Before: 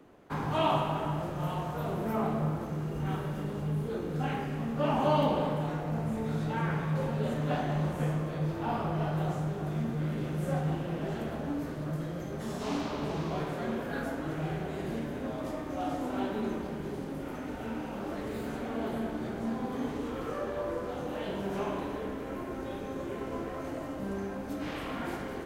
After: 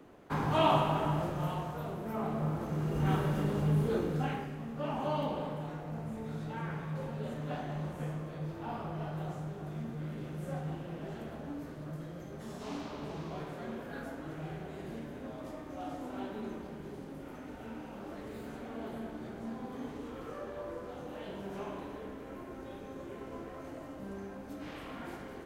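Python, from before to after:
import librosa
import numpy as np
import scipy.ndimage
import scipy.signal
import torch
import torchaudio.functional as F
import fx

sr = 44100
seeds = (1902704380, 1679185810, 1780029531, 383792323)

y = fx.gain(x, sr, db=fx.line((1.23, 1.0), (2.02, -7.0), (3.08, 3.5), (3.98, 3.5), (4.57, -7.5)))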